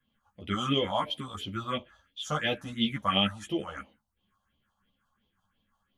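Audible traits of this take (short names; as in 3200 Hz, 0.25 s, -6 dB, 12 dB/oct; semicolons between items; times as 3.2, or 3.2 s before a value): phasing stages 4, 2.9 Hz, lowest notch 340–1500 Hz; tremolo saw up 5.5 Hz, depth 35%; a shimmering, thickened sound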